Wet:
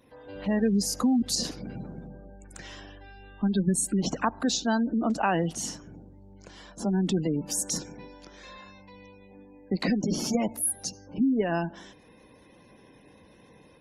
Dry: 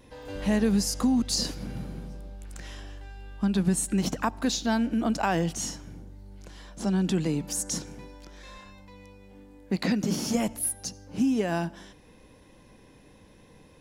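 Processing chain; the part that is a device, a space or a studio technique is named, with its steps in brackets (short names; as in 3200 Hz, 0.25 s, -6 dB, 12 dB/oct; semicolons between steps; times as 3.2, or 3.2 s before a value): noise-suppressed video call (HPF 150 Hz 6 dB/oct; spectral gate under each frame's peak -25 dB strong; AGC gain up to 5 dB; gain -3.5 dB; Opus 20 kbps 48000 Hz)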